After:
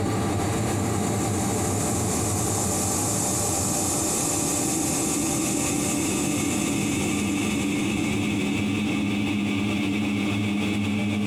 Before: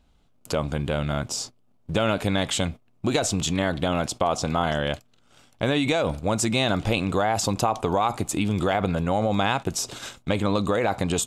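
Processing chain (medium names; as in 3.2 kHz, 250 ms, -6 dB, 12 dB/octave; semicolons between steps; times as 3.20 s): dynamic bell 1.8 kHz, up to +4 dB, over -45 dBFS, Q 3; wavefolder -14.5 dBFS; on a send at -12 dB: reverberation RT60 3.9 s, pre-delay 70 ms; on the sum: Paulstretch 46×, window 0.25 s, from 8.21 s; level flattener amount 100%; trim -5.5 dB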